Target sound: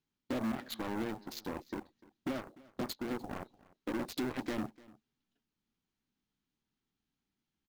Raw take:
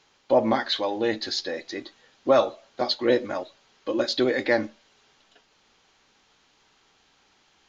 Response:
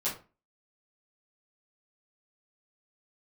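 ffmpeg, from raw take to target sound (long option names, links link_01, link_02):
-filter_complex "[0:a]agate=range=-7dB:threshold=-52dB:ratio=16:detection=peak,afwtdn=0.0224,lowshelf=frequency=360:width_type=q:width=1.5:gain=13.5,acompressor=threshold=-28dB:ratio=4,aeval=exprs='0.119*(cos(1*acos(clip(val(0)/0.119,-1,1)))-cos(1*PI/2))+0.00168*(cos(6*acos(clip(val(0)/0.119,-1,1)))-cos(6*PI/2))+0.0266*(cos(7*acos(clip(val(0)/0.119,-1,1)))-cos(7*PI/2))':channel_layout=same,asoftclip=type=tanh:threshold=-28.5dB,acrusher=bits=5:mode=log:mix=0:aa=0.000001,asettb=1/sr,asplit=3[link_01][link_02][link_03];[link_01]atrim=end=0.974[link_04];[link_02]atrim=start=0.97:end=3.11,asetpts=PTS-STARTPTS,afade=type=in:duration=0.004:curve=qsin,afade=type=out:start_time=2.136:duration=0.004:curve=qsin,tremolo=f=1.6:d=0.42[link_05];[link_03]atrim=start=3.106[link_06];[link_04][link_05]acrossfade=duration=0.004:curve1=hsin:curve2=qsin[link_07];[link_07][link_06]acrossfade=duration=0.004:curve1=qsin:curve2=hsin,aecho=1:1:297:0.0794,volume=-1.5dB"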